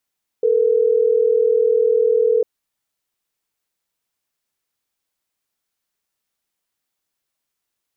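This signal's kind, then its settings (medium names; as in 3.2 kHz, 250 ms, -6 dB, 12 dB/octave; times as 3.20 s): call progress tone ringback tone, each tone -15.5 dBFS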